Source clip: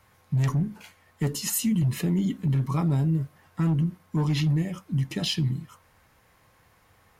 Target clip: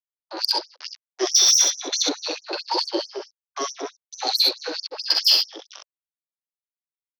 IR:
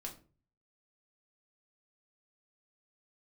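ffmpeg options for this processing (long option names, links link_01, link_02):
-filter_complex "[0:a]afftfilt=real='re*pow(10,20/40*sin(2*PI*(1.3*log(max(b,1)*sr/1024/100)/log(2)-(0.46)*(pts-256)/sr)))':imag='im*pow(10,20/40*sin(2*PI*(1.3*log(max(b,1)*sr/1024/100)/log(2)-(0.46)*(pts-256)/sr)))':win_size=1024:overlap=0.75,highpass=frequency=150:poles=1,highshelf=frequency=3800:width_type=q:width=3:gain=12.5,acontrast=57,agate=range=-25dB:threshold=-42dB:ratio=16:detection=peak,aresample=16000,aeval=exprs='sgn(val(0))*max(abs(val(0))-0.0562,0)':channel_layout=same,aresample=44100,acrossover=split=190 5800:gain=0.141 1 0.251[link_01][link_02][link_03];[link_01][link_02][link_03]amix=inputs=3:normalize=0,asetrate=37084,aresample=44100,atempo=1.18921,asoftclip=type=tanh:threshold=-8.5dB,asplit=2[link_04][link_05];[link_05]aecho=0:1:45|64:0.376|0.668[link_06];[link_04][link_06]amix=inputs=2:normalize=0,acrossover=split=790|2800[link_07][link_08][link_09];[link_08]acompressor=threshold=-41dB:ratio=4[link_10];[link_09]acompressor=threshold=-21dB:ratio=4[link_11];[link_07][link_10][link_11]amix=inputs=3:normalize=0,afftfilt=real='re*gte(b*sr/1024,280*pow(5400/280,0.5+0.5*sin(2*PI*4.6*pts/sr)))':imag='im*gte(b*sr/1024,280*pow(5400/280,0.5+0.5*sin(2*PI*4.6*pts/sr)))':win_size=1024:overlap=0.75,volume=6dB"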